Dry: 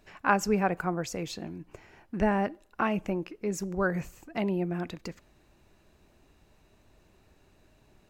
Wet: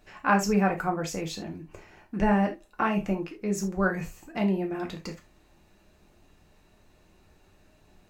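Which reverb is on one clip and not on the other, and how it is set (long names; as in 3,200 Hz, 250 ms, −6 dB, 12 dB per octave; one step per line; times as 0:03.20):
reverb whose tail is shaped and stops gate 100 ms falling, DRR 1.5 dB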